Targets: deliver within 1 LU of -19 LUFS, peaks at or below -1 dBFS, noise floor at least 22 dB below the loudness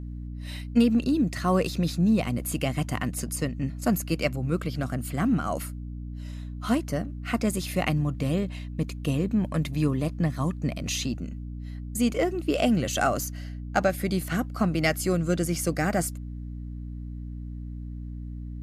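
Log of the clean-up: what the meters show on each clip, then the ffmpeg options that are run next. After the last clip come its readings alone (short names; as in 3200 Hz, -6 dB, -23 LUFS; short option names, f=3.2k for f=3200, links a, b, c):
hum 60 Hz; harmonics up to 300 Hz; hum level -33 dBFS; loudness -27.0 LUFS; peak -10.0 dBFS; loudness target -19.0 LUFS
-> -af "bandreject=f=60:t=h:w=4,bandreject=f=120:t=h:w=4,bandreject=f=180:t=h:w=4,bandreject=f=240:t=h:w=4,bandreject=f=300:t=h:w=4"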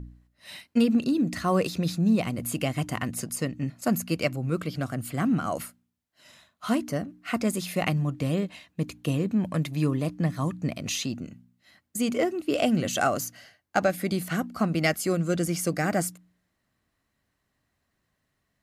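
hum none; loudness -27.5 LUFS; peak -10.0 dBFS; loudness target -19.0 LUFS
-> -af "volume=8.5dB"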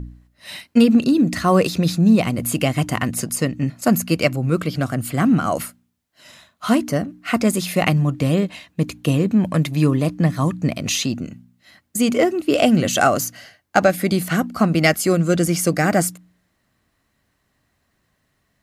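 loudness -19.0 LUFS; peak -1.5 dBFS; noise floor -69 dBFS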